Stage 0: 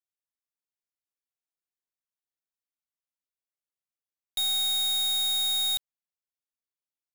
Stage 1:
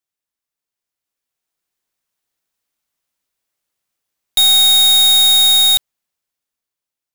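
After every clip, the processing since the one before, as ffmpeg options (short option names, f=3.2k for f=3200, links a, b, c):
-af "dynaudnorm=f=320:g=9:m=9dB,volume=7.5dB"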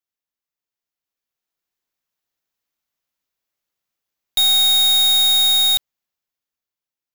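-af "equalizer=f=9k:w=3.6:g=-10.5,volume=-4dB"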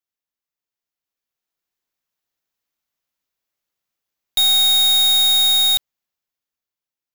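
-af anull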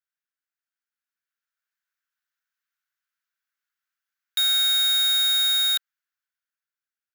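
-af "highpass=f=1.5k:t=q:w=5.2,volume=-7.5dB"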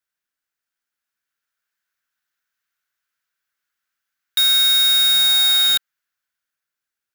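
-af "acrusher=bits=2:mode=log:mix=0:aa=0.000001,volume=5dB"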